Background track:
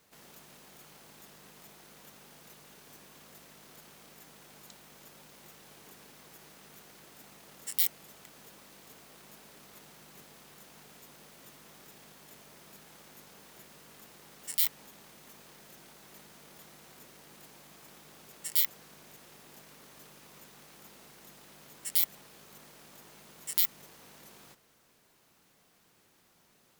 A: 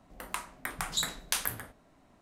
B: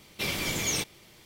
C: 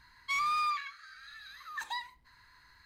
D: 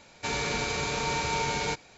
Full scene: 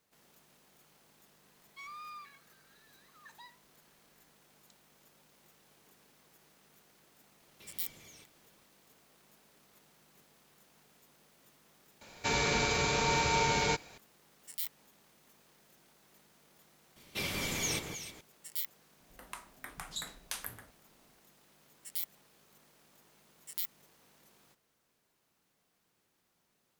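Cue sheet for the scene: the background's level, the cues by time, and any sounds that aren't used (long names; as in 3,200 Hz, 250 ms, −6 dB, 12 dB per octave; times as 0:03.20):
background track −10.5 dB
0:01.48: mix in C −16.5 dB
0:07.41: mix in B −18 dB + downward compressor, threshold −35 dBFS
0:12.01: mix in D
0:16.96: mix in B −5.5 dB + delay that swaps between a low-pass and a high-pass 157 ms, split 1,900 Hz, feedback 52%, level −4 dB
0:18.99: mix in A −9.5 dB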